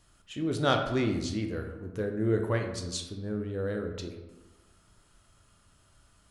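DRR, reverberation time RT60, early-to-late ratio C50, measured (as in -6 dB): 3.5 dB, 1.1 s, 6.5 dB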